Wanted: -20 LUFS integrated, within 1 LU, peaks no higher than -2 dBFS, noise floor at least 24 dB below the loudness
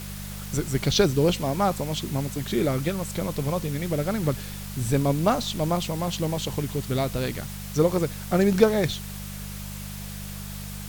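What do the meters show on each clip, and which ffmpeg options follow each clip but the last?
hum 50 Hz; harmonics up to 200 Hz; hum level -35 dBFS; noise floor -36 dBFS; noise floor target -50 dBFS; loudness -26.0 LUFS; peak -3.5 dBFS; loudness target -20.0 LUFS
-> -af "bandreject=f=50:t=h:w=4,bandreject=f=100:t=h:w=4,bandreject=f=150:t=h:w=4,bandreject=f=200:t=h:w=4"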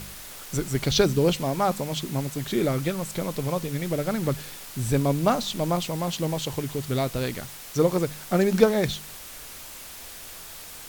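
hum none; noise floor -41 dBFS; noise floor target -50 dBFS
-> -af "afftdn=nr=9:nf=-41"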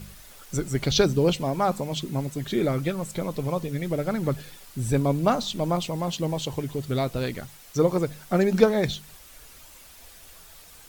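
noise floor -49 dBFS; noise floor target -50 dBFS
-> -af "afftdn=nr=6:nf=-49"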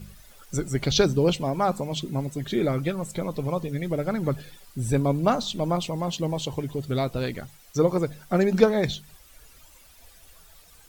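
noise floor -53 dBFS; loudness -26.0 LUFS; peak -3.5 dBFS; loudness target -20.0 LUFS
-> -af "volume=6dB,alimiter=limit=-2dB:level=0:latency=1"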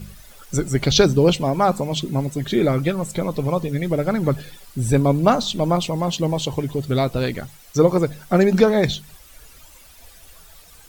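loudness -20.0 LUFS; peak -2.0 dBFS; noise floor -47 dBFS

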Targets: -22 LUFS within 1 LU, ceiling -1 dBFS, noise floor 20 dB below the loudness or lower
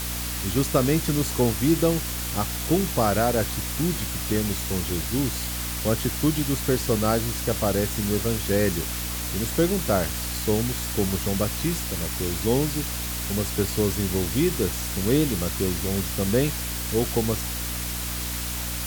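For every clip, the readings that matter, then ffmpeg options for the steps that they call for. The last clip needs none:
hum 60 Hz; harmonics up to 300 Hz; hum level -31 dBFS; noise floor -30 dBFS; noise floor target -45 dBFS; loudness -24.5 LUFS; peak -8.0 dBFS; loudness target -22.0 LUFS
-> -af "bandreject=f=60:t=h:w=6,bandreject=f=120:t=h:w=6,bandreject=f=180:t=h:w=6,bandreject=f=240:t=h:w=6,bandreject=f=300:t=h:w=6"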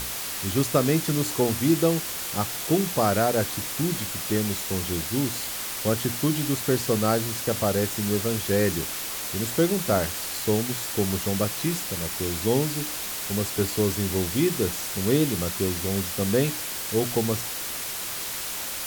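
hum none; noise floor -32 dBFS; noise floor target -45 dBFS
-> -af "afftdn=nr=13:nf=-32"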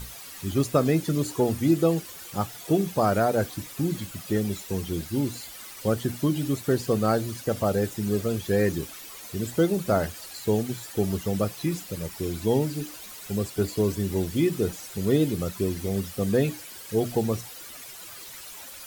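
noise floor -42 dBFS; noise floor target -47 dBFS
-> -af "afftdn=nr=6:nf=-42"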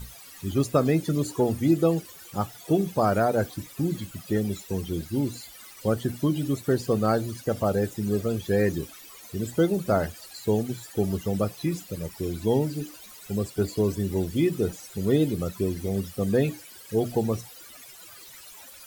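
noise floor -47 dBFS; loudness -27.0 LUFS; peak -10.0 dBFS; loudness target -22.0 LUFS
-> -af "volume=5dB"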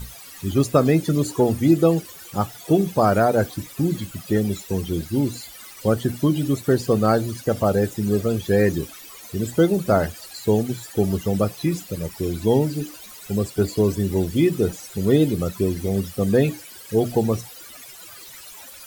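loudness -22.0 LUFS; peak -5.0 dBFS; noise floor -42 dBFS

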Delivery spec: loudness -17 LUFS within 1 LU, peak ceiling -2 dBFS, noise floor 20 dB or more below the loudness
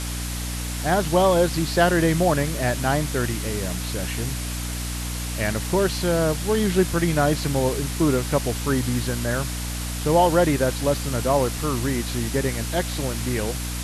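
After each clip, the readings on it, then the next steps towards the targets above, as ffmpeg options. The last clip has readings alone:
hum 60 Hz; harmonics up to 300 Hz; hum level -27 dBFS; noise floor -29 dBFS; noise floor target -43 dBFS; loudness -23.0 LUFS; peak -6.0 dBFS; loudness target -17.0 LUFS
-> -af "bandreject=f=60:t=h:w=4,bandreject=f=120:t=h:w=4,bandreject=f=180:t=h:w=4,bandreject=f=240:t=h:w=4,bandreject=f=300:t=h:w=4"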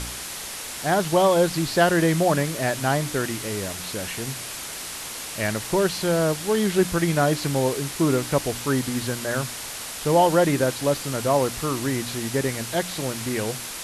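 hum none; noise floor -34 dBFS; noise floor target -44 dBFS
-> -af "afftdn=nr=10:nf=-34"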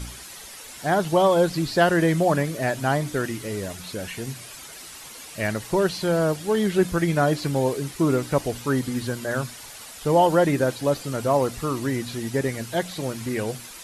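noise floor -41 dBFS; noise floor target -44 dBFS
-> -af "afftdn=nr=6:nf=-41"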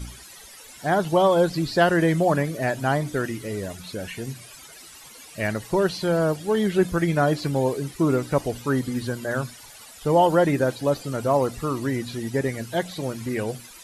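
noise floor -45 dBFS; loudness -23.5 LUFS; peak -7.0 dBFS; loudness target -17.0 LUFS
-> -af "volume=6.5dB,alimiter=limit=-2dB:level=0:latency=1"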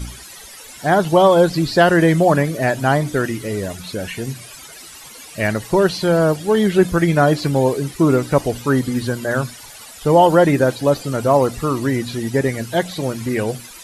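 loudness -17.5 LUFS; peak -2.0 dBFS; noise floor -39 dBFS

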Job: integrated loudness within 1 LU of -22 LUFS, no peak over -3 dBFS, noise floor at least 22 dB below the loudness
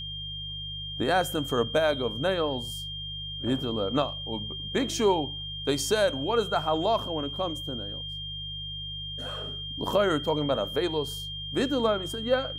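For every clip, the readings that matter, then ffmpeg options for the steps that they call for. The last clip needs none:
hum 50 Hz; harmonics up to 150 Hz; hum level -40 dBFS; steady tone 3200 Hz; tone level -35 dBFS; loudness -28.5 LUFS; peak -12.0 dBFS; loudness target -22.0 LUFS
-> -af "bandreject=f=50:t=h:w=4,bandreject=f=100:t=h:w=4,bandreject=f=150:t=h:w=4"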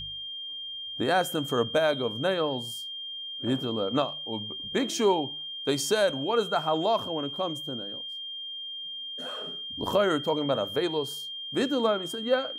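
hum none; steady tone 3200 Hz; tone level -35 dBFS
-> -af "bandreject=f=3.2k:w=30"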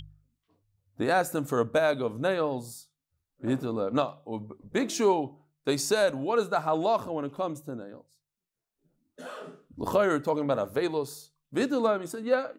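steady tone none; loudness -28.5 LUFS; peak -12.0 dBFS; loudness target -22.0 LUFS
-> -af "volume=6.5dB"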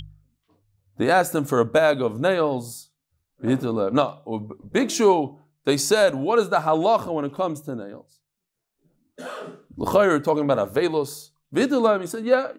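loudness -22.0 LUFS; peak -5.5 dBFS; noise floor -80 dBFS

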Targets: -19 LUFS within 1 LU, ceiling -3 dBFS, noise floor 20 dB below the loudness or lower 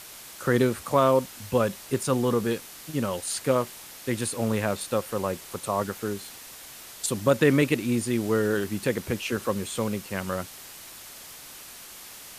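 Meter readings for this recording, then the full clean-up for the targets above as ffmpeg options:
noise floor -44 dBFS; noise floor target -47 dBFS; loudness -26.5 LUFS; peak -8.5 dBFS; loudness target -19.0 LUFS
-> -af "afftdn=nr=6:nf=-44"
-af "volume=7.5dB,alimiter=limit=-3dB:level=0:latency=1"

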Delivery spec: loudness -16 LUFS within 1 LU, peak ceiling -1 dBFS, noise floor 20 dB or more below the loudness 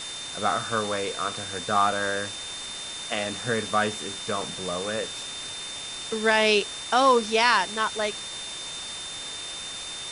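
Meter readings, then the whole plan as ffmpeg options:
steady tone 3600 Hz; tone level -36 dBFS; noise floor -36 dBFS; noise floor target -46 dBFS; loudness -26.0 LUFS; peak -6.5 dBFS; loudness target -16.0 LUFS
-> -af "bandreject=f=3.6k:w=30"
-af "afftdn=nr=10:nf=-36"
-af "volume=10dB,alimiter=limit=-1dB:level=0:latency=1"

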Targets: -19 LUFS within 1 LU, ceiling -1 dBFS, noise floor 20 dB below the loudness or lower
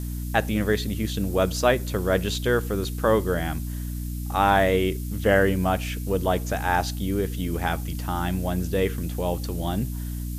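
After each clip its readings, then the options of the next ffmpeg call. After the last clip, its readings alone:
hum 60 Hz; harmonics up to 300 Hz; hum level -28 dBFS; noise floor -31 dBFS; noise floor target -45 dBFS; loudness -25.0 LUFS; peak -6.0 dBFS; loudness target -19.0 LUFS
-> -af "bandreject=f=60:t=h:w=6,bandreject=f=120:t=h:w=6,bandreject=f=180:t=h:w=6,bandreject=f=240:t=h:w=6,bandreject=f=300:t=h:w=6"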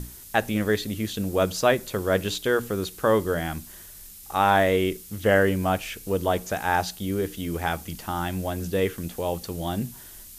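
hum none; noise floor -45 dBFS; noise floor target -46 dBFS
-> -af "afftdn=nr=6:nf=-45"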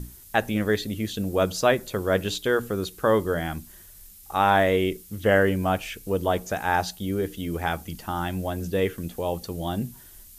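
noise floor -48 dBFS; loudness -25.5 LUFS; peak -6.0 dBFS; loudness target -19.0 LUFS
-> -af "volume=6.5dB,alimiter=limit=-1dB:level=0:latency=1"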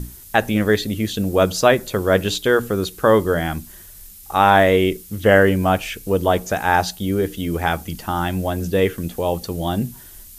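loudness -19.0 LUFS; peak -1.0 dBFS; noise floor -42 dBFS

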